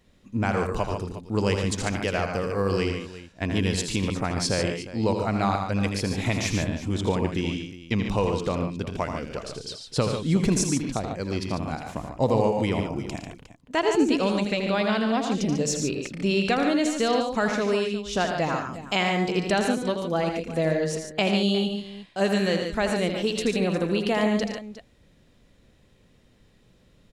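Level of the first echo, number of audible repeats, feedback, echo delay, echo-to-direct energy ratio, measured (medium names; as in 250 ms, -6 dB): -7.5 dB, 4, no regular repeats, 81 ms, -3.5 dB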